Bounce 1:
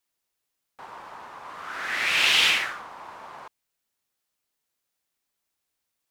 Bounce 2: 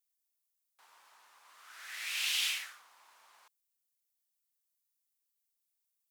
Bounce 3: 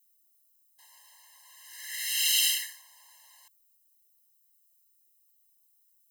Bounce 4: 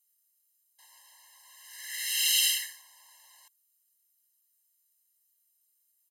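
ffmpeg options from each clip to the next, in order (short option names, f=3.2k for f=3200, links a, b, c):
-af "aderivative,volume=-5.5dB"
-af "crystalizer=i=4:c=0,lowshelf=f=460:t=q:w=3:g=11.5,afftfilt=real='re*eq(mod(floor(b*sr/1024/540),2),1)':imag='im*eq(mod(floor(b*sr/1024/540),2),1)':win_size=1024:overlap=0.75,volume=1.5dB"
-af "aresample=32000,aresample=44100"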